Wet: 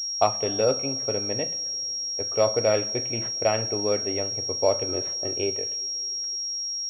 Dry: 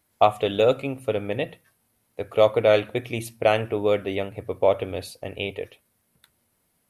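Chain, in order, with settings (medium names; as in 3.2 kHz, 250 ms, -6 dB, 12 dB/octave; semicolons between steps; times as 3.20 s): 4.88–5.57 s: small resonant body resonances 360/1300 Hz, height 13 dB; two-slope reverb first 0.34 s, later 3.4 s, from -18 dB, DRR 11 dB; class-D stage that switches slowly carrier 5.6 kHz; trim -3.5 dB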